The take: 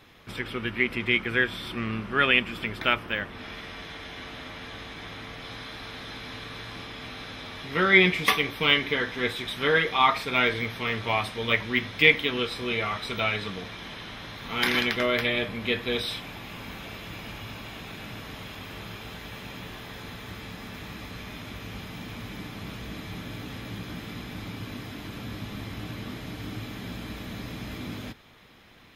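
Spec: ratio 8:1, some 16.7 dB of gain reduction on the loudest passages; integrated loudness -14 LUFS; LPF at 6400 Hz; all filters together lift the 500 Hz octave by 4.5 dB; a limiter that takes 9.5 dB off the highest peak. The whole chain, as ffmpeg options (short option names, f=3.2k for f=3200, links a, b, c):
-af "lowpass=6.4k,equalizer=f=500:t=o:g=5.5,acompressor=threshold=-29dB:ratio=8,volume=23dB,alimiter=limit=-2dB:level=0:latency=1"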